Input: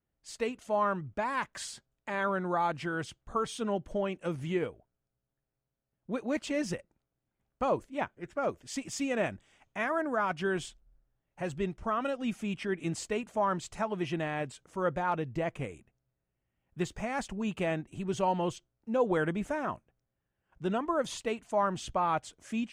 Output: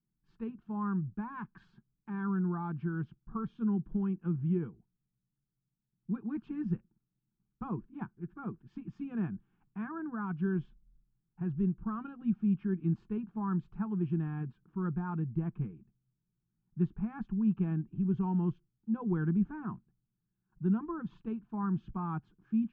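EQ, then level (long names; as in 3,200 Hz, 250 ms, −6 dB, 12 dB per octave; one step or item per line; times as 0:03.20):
transistor ladder low-pass 2,000 Hz, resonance 65%
low shelf with overshoot 360 Hz +13.5 dB, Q 3
phaser with its sweep stopped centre 390 Hz, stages 8
0.0 dB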